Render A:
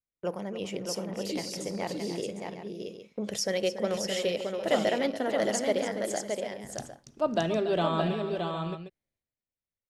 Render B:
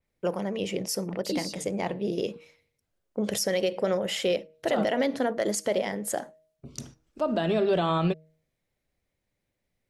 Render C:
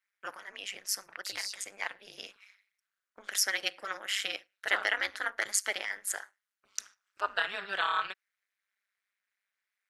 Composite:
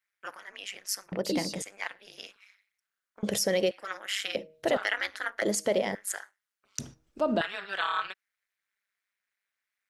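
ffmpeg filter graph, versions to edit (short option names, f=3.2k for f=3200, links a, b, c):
-filter_complex "[1:a]asplit=5[a][b][c][d][e];[2:a]asplit=6[f][g][h][i][j][k];[f]atrim=end=1.122[l];[a]atrim=start=1.118:end=1.622[m];[g]atrim=start=1.618:end=3.232[n];[b]atrim=start=3.228:end=3.712[o];[h]atrim=start=3.708:end=4.352[p];[c]atrim=start=4.348:end=4.772[q];[i]atrim=start=4.768:end=5.422[r];[d]atrim=start=5.418:end=5.952[s];[j]atrim=start=5.948:end=6.792[t];[e]atrim=start=6.788:end=7.412[u];[k]atrim=start=7.408[v];[l][m]acrossfade=d=0.004:c1=hsin:c2=hsin[w];[w][n]acrossfade=d=0.004:c1=hsin:c2=hsin[x];[x][o]acrossfade=d=0.004:c1=hsin:c2=hsin[y];[y][p]acrossfade=d=0.004:c1=hsin:c2=hsin[z];[z][q]acrossfade=d=0.004:c1=hsin:c2=hsin[aa];[aa][r]acrossfade=d=0.004:c1=hsin:c2=hsin[ab];[ab][s]acrossfade=d=0.004:c1=hsin:c2=hsin[ac];[ac][t]acrossfade=d=0.004:c1=hsin:c2=hsin[ad];[ad][u]acrossfade=d=0.004:c1=hsin:c2=hsin[ae];[ae][v]acrossfade=d=0.004:c1=hsin:c2=hsin"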